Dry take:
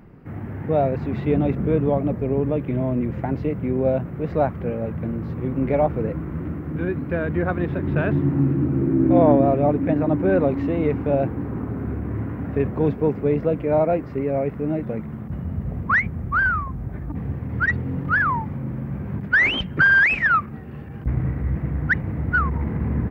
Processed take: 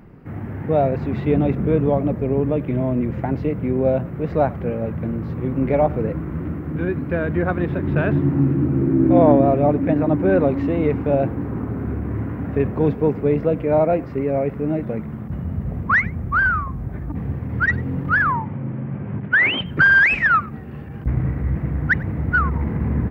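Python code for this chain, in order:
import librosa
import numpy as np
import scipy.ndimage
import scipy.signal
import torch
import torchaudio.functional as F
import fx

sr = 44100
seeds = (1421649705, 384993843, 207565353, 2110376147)

y = fx.cheby1_bandpass(x, sr, low_hz=100.0, high_hz=3100.0, order=3, at=(18.32, 19.66))
y = y + 10.0 ** (-23.0 / 20.0) * np.pad(y, (int(97 * sr / 1000.0), 0))[:len(y)]
y = y * 10.0 ** (2.0 / 20.0)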